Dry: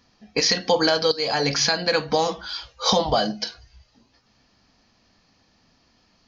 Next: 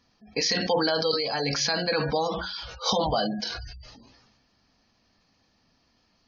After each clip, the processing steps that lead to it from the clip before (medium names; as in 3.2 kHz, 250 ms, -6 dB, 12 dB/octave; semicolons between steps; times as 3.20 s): de-hum 183.8 Hz, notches 14; spectral gate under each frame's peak -25 dB strong; decay stretcher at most 37 dB/s; trim -5.5 dB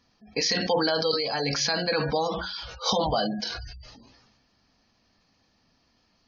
no audible change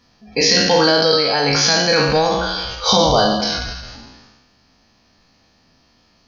spectral sustain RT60 1.22 s; trim +7.5 dB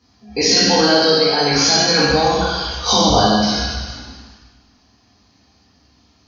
reverberation RT60 1.3 s, pre-delay 3 ms, DRR -4.5 dB; trim -8.5 dB